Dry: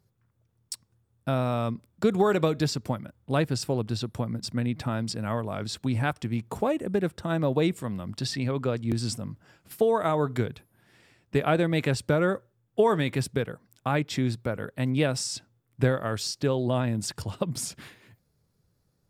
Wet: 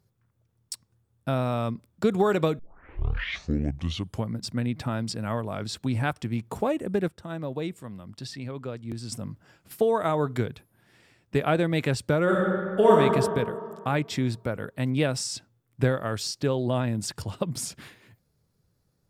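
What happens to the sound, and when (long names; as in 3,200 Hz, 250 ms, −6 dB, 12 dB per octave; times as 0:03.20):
0:02.59: tape start 1.74 s
0:07.08–0:09.12: clip gain −7.5 dB
0:12.23–0:12.97: thrown reverb, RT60 2.1 s, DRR −4.5 dB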